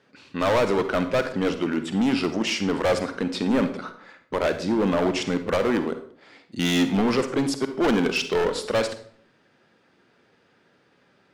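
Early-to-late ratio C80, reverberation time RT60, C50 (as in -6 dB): 14.0 dB, 0.55 s, 10.5 dB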